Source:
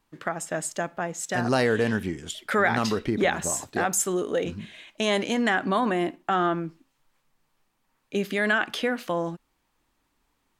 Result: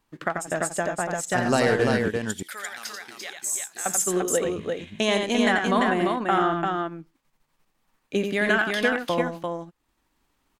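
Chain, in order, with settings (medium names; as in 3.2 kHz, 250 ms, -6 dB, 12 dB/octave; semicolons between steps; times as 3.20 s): transient shaper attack +3 dB, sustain -8 dB; 2.08–3.86 s: differentiator; multi-tap echo 88/344 ms -5.5/-4 dB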